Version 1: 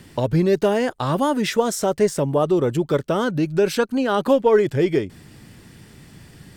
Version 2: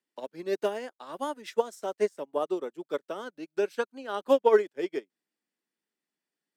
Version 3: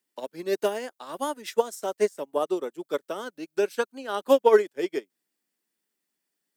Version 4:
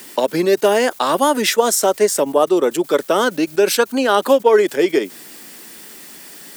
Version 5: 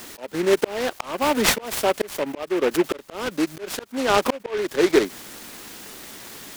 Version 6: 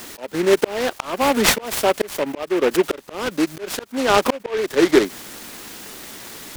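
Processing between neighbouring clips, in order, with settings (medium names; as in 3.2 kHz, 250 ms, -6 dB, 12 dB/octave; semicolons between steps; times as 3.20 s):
Bessel high-pass 370 Hz, order 8; upward expansion 2.5:1, over -39 dBFS; trim -1 dB
treble shelf 7 kHz +11 dB; trim +3 dB
level flattener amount 70%; trim +3.5 dB
slow attack 495 ms; delay time shaken by noise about 1.6 kHz, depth 0.074 ms
warped record 33 1/3 rpm, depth 100 cents; trim +3 dB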